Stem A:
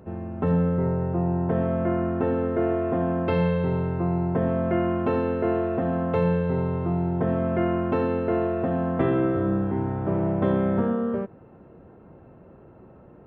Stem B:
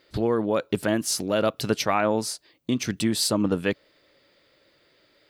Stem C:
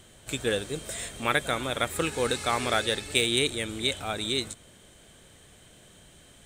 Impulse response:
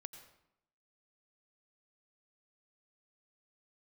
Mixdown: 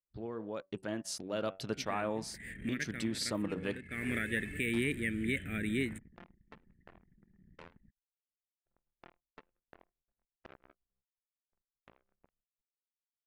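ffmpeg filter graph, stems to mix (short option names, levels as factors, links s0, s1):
-filter_complex "[0:a]highpass=f=1100:p=1,acrusher=bits=3:mix=0:aa=0.5,adelay=1450,volume=0.126[s0];[1:a]lowpass=9500,bandreject=f=95.41:t=h:w=4,bandreject=f=190.82:t=h:w=4,bandreject=f=286.23:t=h:w=4,bandreject=f=381.64:t=h:w=4,bandreject=f=477.05:t=h:w=4,bandreject=f=572.46:t=h:w=4,bandreject=f=667.87:t=h:w=4,bandreject=f=763.28:t=h:w=4,bandreject=f=858.69:t=h:w=4,bandreject=f=954.1:t=h:w=4,bandreject=f=1049.51:t=h:w=4,bandreject=f=1144.92:t=h:w=4,bandreject=f=1240.33:t=h:w=4,bandreject=f=1335.74:t=h:w=4,bandreject=f=1431.15:t=h:w=4,bandreject=f=1526.56:t=h:w=4,bandreject=f=1621.97:t=h:w=4,bandreject=f=1717.38:t=h:w=4,bandreject=f=1812.79:t=h:w=4,bandreject=f=1908.2:t=h:w=4,bandreject=f=2003.61:t=h:w=4,bandreject=f=2099.02:t=h:w=4,bandreject=f=2194.43:t=h:w=4,bandreject=f=2289.84:t=h:w=4,bandreject=f=2385.25:t=h:w=4,bandreject=f=2480.66:t=h:w=4,bandreject=f=2576.07:t=h:w=4,bandreject=f=2671.48:t=h:w=4,bandreject=f=2766.89:t=h:w=4,bandreject=f=2862.3:t=h:w=4,bandreject=f=2957.71:t=h:w=4,bandreject=f=3053.12:t=h:w=4,bandreject=f=3148.53:t=h:w=4,bandreject=f=3243.94:t=h:w=4,bandreject=f=3339.35:t=h:w=4,bandreject=f=3434.76:t=h:w=4,bandreject=f=3530.17:t=h:w=4,bandreject=f=3625.58:t=h:w=4,dynaudnorm=f=350:g=5:m=2,volume=0.133,asplit=2[s1][s2];[2:a]firequalizer=gain_entry='entry(120,0);entry(190,7);entry(880,-30);entry(1800,10);entry(4600,-25);entry(9100,-1);entry(14000,7)':delay=0.05:min_phase=1,agate=range=0.0224:threshold=0.00355:ratio=3:detection=peak,highshelf=f=2600:g=-9.5,adelay=1450,volume=0.944[s3];[s2]apad=whole_len=352919[s4];[s3][s4]sidechaincompress=threshold=0.00501:ratio=16:attack=31:release=492[s5];[s0][s1][s5]amix=inputs=3:normalize=0,anlmdn=0.00398,alimiter=limit=0.0794:level=0:latency=1:release=186"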